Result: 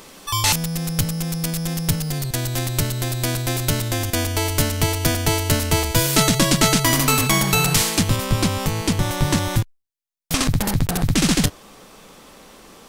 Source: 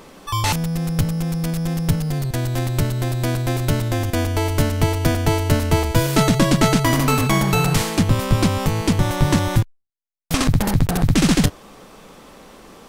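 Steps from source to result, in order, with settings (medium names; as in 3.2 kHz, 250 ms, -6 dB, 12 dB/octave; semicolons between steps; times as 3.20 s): treble shelf 2.4 kHz +11.5 dB, from 8.16 s +6.5 dB; trim -3 dB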